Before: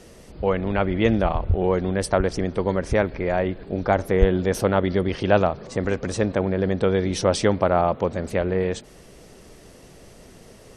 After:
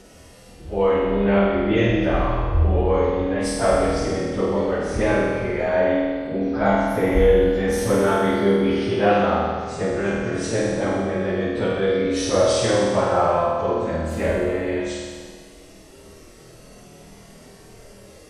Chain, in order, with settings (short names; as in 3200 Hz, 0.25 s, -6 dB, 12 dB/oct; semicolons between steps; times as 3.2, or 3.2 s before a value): flutter echo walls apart 4.3 m, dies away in 1 s; plain phase-vocoder stretch 1.7×